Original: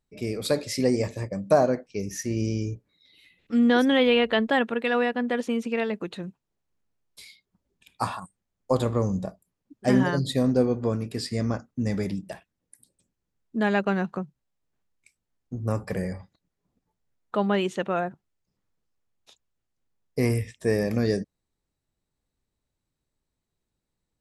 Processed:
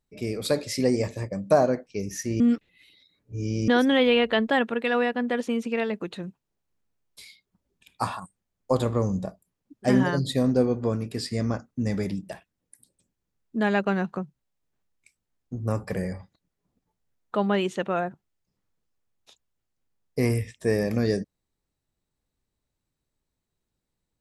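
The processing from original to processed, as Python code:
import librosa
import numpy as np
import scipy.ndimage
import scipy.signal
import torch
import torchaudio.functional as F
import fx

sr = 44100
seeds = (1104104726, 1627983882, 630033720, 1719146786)

y = fx.edit(x, sr, fx.reverse_span(start_s=2.4, length_s=1.28), tone=tone)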